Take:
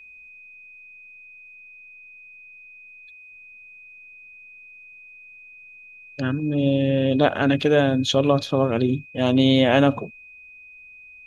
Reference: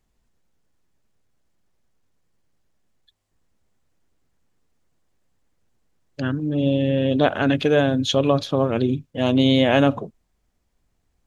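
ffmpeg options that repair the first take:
ffmpeg -i in.wav -af "bandreject=frequency=2500:width=30" out.wav

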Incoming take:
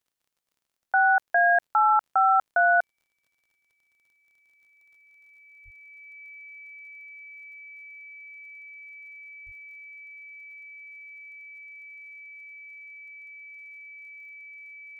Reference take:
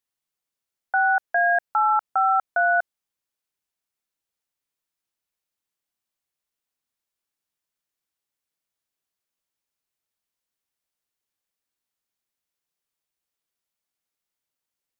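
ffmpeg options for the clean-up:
ffmpeg -i in.wav -filter_complex "[0:a]adeclick=threshold=4,bandreject=frequency=2300:width=30,asplit=3[link_01][link_02][link_03];[link_01]afade=type=out:start_time=5.64:duration=0.02[link_04];[link_02]highpass=frequency=140:width=0.5412,highpass=frequency=140:width=1.3066,afade=type=in:start_time=5.64:duration=0.02,afade=type=out:start_time=5.76:duration=0.02[link_05];[link_03]afade=type=in:start_time=5.76:duration=0.02[link_06];[link_04][link_05][link_06]amix=inputs=3:normalize=0,asplit=3[link_07][link_08][link_09];[link_07]afade=type=out:start_time=9.45:duration=0.02[link_10];[link_08]highpass=frequency=140:width=0.5412,highpass=frequency=140:width=1.3066,afade=type=in:start_time=9.45:duration=0.02,afade=type=out:start_time=9.57:duration=0.02[link_11];[link_09]afade=type=in:start_time=9.57:duration=0.02[link_12];[link_10][link_11][link_12]amix=inputs=3:normalize=0" out.wav

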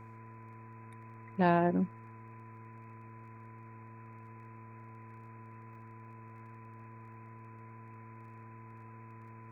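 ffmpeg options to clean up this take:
ffmpeg -i in.wav -af "adeclick=threshold=4,bandreject=frequency=112.8:width_type=h:width=4,bandreject=frequency=225.6:width_type=h:width=4,bandreject=frequency=338.4:width_type=h:width=4,bandreject=frequency=451.2:width_type=h:width=4,bandreject=frequency=1000:width=30,afwtdn=0.0022" out.wav

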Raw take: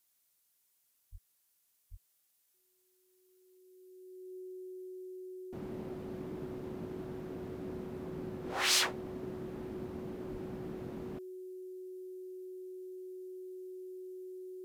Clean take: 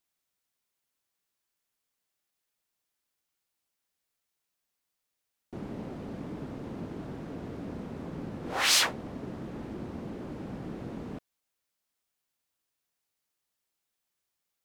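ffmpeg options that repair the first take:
ffmpeg -i in.wav -filter_complex "[0:a]bandreject=frequency=370:width=30,asplit=3[link_01][link_02][link_03];[link_01]afade=type=out:start_time=1.11:duration=0.02[link_04];[link_02]highpass=frequency=140:width=0.5412,highpass=frequency=140:width=1.3066,afade=type=in:start_time=1.11:duration=0.02,afade=type=out:start_time=1.23:duration=0.02[link_05];[link_03]afade=type=in:start_time=1.23:duration=0.02[link_06];[link_04][link_05][link_06]amix=inputs=3:normalize=0,asplit=3[link_07][link_08][link_09];[link_07]afade=type=out:start_time=1.9:duration=0.02[link_10];[link_08]highpass=frequency=140:width=0.5412,highpass=frequency=140:width=1.3066,afade=type=in:start_time=1.9:duration=0.02,afade=type=out:start_time=2.02:duration=0.02[link_11];[link_09]afade=type=in:start_time=2.02:duration=0.02[link_12];[link_10][link_11][link_12]amix=inputs=3:normalize=0,asplit=3[link_13][link_14][link_15];[link_13]afade=type=out:start_time=10.31:duration=0.02[link_16];[link_14]highpass=frequency=140:width=0.5412,highpass=frequency=140:width=1.3066,afade=type=in:start_time=10.31:duration=0.02,afade=type=out:start_time=10.43:duration=0.02[link_17];[link_15]afade=type=in:start_time=10.43:duration=0.02[link_18];[link_16][link_17][link_18]amix=inputs=3:normalize=0,agate=range=-21dB:threshold=-67dB,asetnsamples=nb_out_samples=441:pad=0,asendcmd='3.57 volume volume 5dB',volume=0dB" out.wav

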